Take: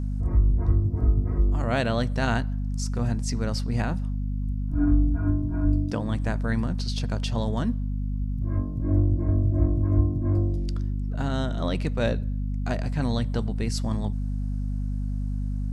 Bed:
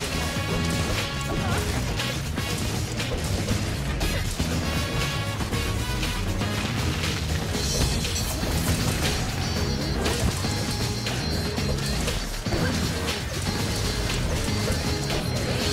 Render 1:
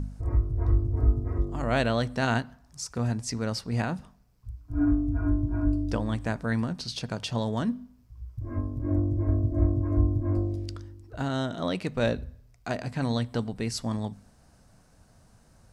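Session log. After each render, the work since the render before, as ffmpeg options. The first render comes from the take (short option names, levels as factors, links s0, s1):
-af "bandreject=f=50:t=h:w=4,bandreject=f=100:t=h:w=4,bandreject=f=150:t=h:w=4,bandreject=f=200:t=h:w=4,bandreject=f=250:t=h:w=4"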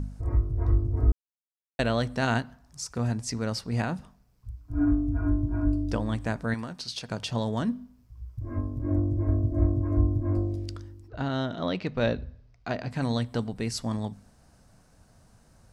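-filter_complex "[0:a]asettb=1/sr,asplit=3[s0][s1][s2];[s0]atrim=end=6.544[s3];[s1]atrim=start=6.54:end=7.1,asetpts=PTS-STARTPTS,afade=t=in:d=0.004:c=qsin,afade=t=out:st=0.556:d=0.004:c=qsin,lowshelf=f=390:g=-10[s4];[s2]atrim=start=7.096[s5];[s3][s4]acrossfade=d=0.004:c1=hsin:c2=qsin[s6];[s6][s5]acrossfade=d=0.004:c1=qsin:c2=hsin,asettb=1/sr,asplit=3[s7][s8][s9];[s7]atrim=end=11.084[s10];[s8]atrim=start=11.08:end=12.91,asetpts=PTS-STARTPTS,afade=t=in:d=0.004:c=qsin,afade=t=out:st=1.826:d=0.004:c=qsin,lowpass=f=5300:w=0.5412,lowpass=f=5300:w=1.3066[s11];[s9]atrim=start=12.906[s12];[s10][s11]acrossfade=d=0.004:c1=hsin:c2=qsin[s13];[s13][s12]acrossfade=d=0.004:c1=qsin:c2=hsin,asplit=3[s14][s15][s16];[s14]atrim=end=1.12,asetpts=PTS-STARTPTS,afade=t=out:st=1.116:d=0.004:c=hsin[s17];[s15]atrim=start=1.12:end=1.79,asetpts=PTS-STARTPTS,volume=0[s18];[s16]atrim=start=1.79,asetpts=PTS-STARTPTS,afade=t=in:d=0.004:c=hsin[s19];[s17][s18][s19]concat=n=3:v=0:a=1"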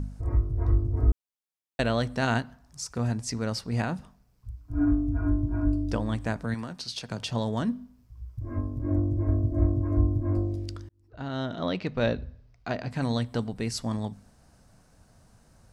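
-filter_complex "[0:a]asettb=1/sr,asplit=3[s0][s1][s2];[s0]atrim=end=6.354[s3];[s1]atrim=start=6.35:end=7.23,asetpts=PTS-STARTPTS,afade=t=in:d=0.004:c=qsin,afade=t=out:st=0.876:d=0.004:c=qsin,acrossover=split=280|3000[s4][s5][s6];[s5]acompressor=threshold=0.0251:ratio=6:attack=3.2:release=140:knee=2.83:detection=peak[s7];[s4][s7][s6]amix=inputs=3:normalize=0[s8];[s2]atrim=start=7.226[s9];[s3][s8]acrossfade=d=0.004:c1=hsin:c2=qsin[s10];[s10][s9]acrossfade=d=0.004:c1=qsin:c2=hsin,asplit=2[s11][s12];[s11]atrim=end=10.89,asetpts=PTS-STARTPTS,afade=t=out:st=10.886:d=0.004:c=hsin[s13];[s12]atrim=start=10.89,asetpts=PTS-STARTPTS,afade=t=in:d=0.66[s14];[s13][s14]concat=n=2:v=0:a=1"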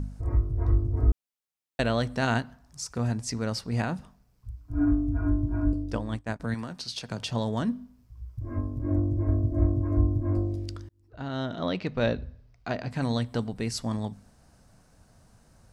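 -filter_complex "[0:a]asettb=1/sr,asplit=3[s0][s1][s2];[s0]atrim=end=5.734[s3];[s1]atrim=start=5.73:end=6.4,asetpts=PTS-STARTPTS,afade=t=in:d=0.004:c=qsin,afade=t=out:st=0.666:d=0.004:c=qsin,agate=range=0.0224:threshold=0.0562:ratio=3:release=100:detection=peak[s4];[s2]atrim=start=6.396[s5];[s3][s4]acrossfade=d=0.004:c1=hsin:c2=qsin[s6];[s6][s5]acrossfade=d=0.004:c1=qsin:c2=hsin"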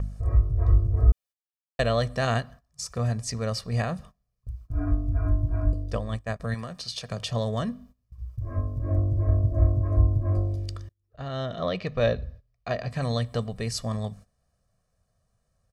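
-af "agate=range=0.141:threshold=0.00501:ratio=16:detection=peak,aecho=1:1:1.7:0.66"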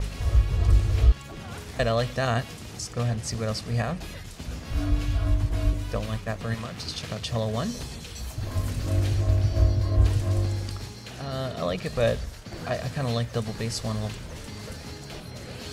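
-filter_complex "[1:a]volume=0.224[s0];[0:a][s0]amix=inputs=2:normalize=0"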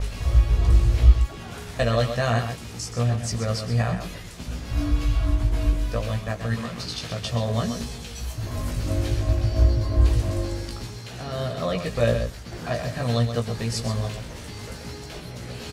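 -filter_complex "[0:a]asplit=2[s0][s1];[s1]adelay=17,volume=0.631[s2];[s0][s2]amix=inputs=2:normalize=0,asplit=2[s3][s4];[s4]adelay=128.3,volume=0.398,highshelf=f=4000:g=-2.89[s5];[s3][s5]amix=inputs=2:normalize=0"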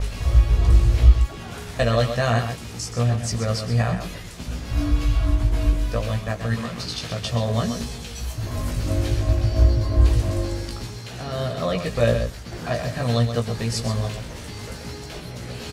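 -af "volume=1.26,alimiter=limit=0.708:level=0:latency=1"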